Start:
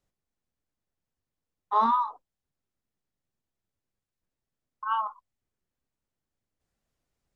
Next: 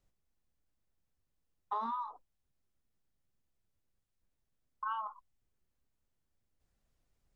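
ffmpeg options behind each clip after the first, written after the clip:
-af "lowshelf=f=79:g=10,acompressor=threshold=-33dB:ratio=8,volume=-1dB"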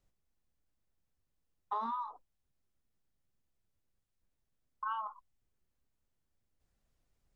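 -af anull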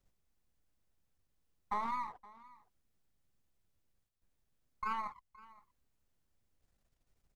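-af "aeval=exprs='if(lt(val(0),0),0.447*val(0),val(0))':c=same,aecho=1:1:519:0.0891,volume=2.5dB"

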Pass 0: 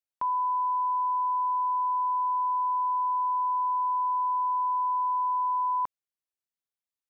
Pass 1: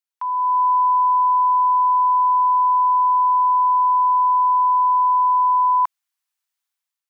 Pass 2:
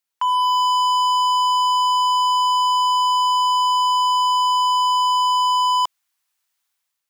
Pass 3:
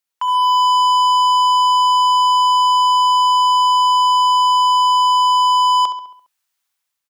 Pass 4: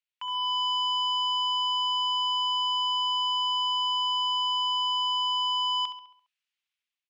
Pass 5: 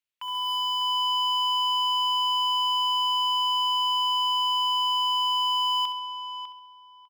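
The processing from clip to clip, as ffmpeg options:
-af "highpass=f=820:w=0.5412,highpass=f=820:w=1.3066,dynaudnorm=f=120:g=7:m=9dB,volume=2.5dB"
-af "asoftclip=type=hard:threshold=-24.5dB,volume=7.5dB"
-filter_complex "[0:a]asplit=2[a][b];[b]adelay=68,lowpass=f=4k:p=1,volume=-9.5dB,asplit=2[c][d];[d]adelay=68,lowpass=f=4k:p=1,volume=0.55,asplit=2[e][f];[f]adelay=68,lowpass=f=4k:p=1,volume=0.55,asplit=2[g][h];[h]adelay=68,lowpass=f=4k:p=1,volume=0.55,asplit=2[i][j];[j]adelay=68,lowpass=f=4k:p=1,volume=0.55,asplit=2[k][l];[l]adelay=68,lowpass=f=4k:p=1,volume=0.55[m];[a][c][e][g][i][k][m]amix=inputs=7:normalize=0"
-af "bandpass=f=2.7k:t=q:w=2.1:csg=0,volume=-3.5dB"
-filter_complex "[0:a]acrusher=bits=5:mode=log:mix=0:aa=0.000001,asplit=2[a][b];[b]adelay=600,lowpass=f=2.1k:p=1,volume=-7dB,asplit=2[c][d];[d]adelay=600,lowpass=f=2.1k:p=1,volume=0.21,asplit=2[e][f];[f]adelay=600,lowpass=f=2.1k:p=1,volume=0.21[g];[a][c][e][g]amix=inputs=4:normalize=0"

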